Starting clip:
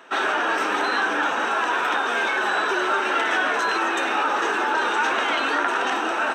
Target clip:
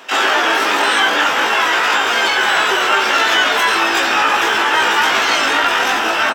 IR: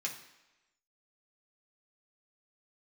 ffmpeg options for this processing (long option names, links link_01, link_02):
-filter_complex "[0:a]asubboost=boost=7.5:cutoff=110,acontrast=75,asplit=3[link_01][link_02][link_03];[link_02]asetrate=58866,aresample=44100,atempo=0.749154,volume=-10dB[link_04];[link_03]asetrate=88200,aresample=44100,atempo=0.5,volume=-4dB[link_05];[link_01][link_04][link_05]amix=inputs=3:normalize=0,asplit=2[link_06][link_07];[link_07]adelay=18,volume=-5dB[link_08];[link_06][link_08]amix=inputs=2:normalize=0,volume=-1dB"